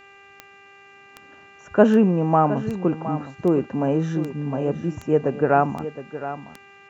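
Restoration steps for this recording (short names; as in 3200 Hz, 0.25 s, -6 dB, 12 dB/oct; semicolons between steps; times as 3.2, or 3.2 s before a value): de-click; de-hum 396.6 Hz, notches 7; inverse comb 0.715 s -12.5 dB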